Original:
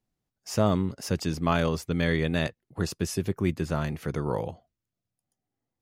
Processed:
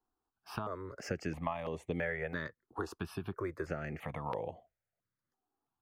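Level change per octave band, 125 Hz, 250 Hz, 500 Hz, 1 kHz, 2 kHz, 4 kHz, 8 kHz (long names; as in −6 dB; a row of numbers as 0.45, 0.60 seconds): −14.5, −14.0, −9.5, −8.0, −7.0, −16.0, −17.5 decibels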